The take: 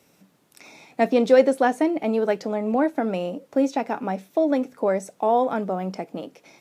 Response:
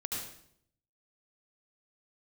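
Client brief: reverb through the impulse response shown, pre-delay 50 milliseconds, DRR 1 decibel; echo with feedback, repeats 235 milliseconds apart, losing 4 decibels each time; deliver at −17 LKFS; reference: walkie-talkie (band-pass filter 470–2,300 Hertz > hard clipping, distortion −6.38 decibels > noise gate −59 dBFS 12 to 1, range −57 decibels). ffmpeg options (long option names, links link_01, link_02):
-filter_complex "[0:a]aecho=1:1:235|470|705|940|1175|1410|1645|1880|2115:0.631|0.398|0.25|0.158|0.0994|0.0626|0.0394|0.0249|0.0157,asplit=2[link_01][link_02];[1:a]atrim=start_sample=2205,adelay=50[link_03];[link_02][link_03]afir=irnorm=-1:irlink=0,volume=-3.5dB[link_04];[link_01][link_04]amix=inputs=2:normalize=0,highpass=470,lowpass=2300,asoftclip=type=hard:threshold=-22dB,agate=range=-57dB:threshold=-59dB:ratio=12,volume=8.5dB"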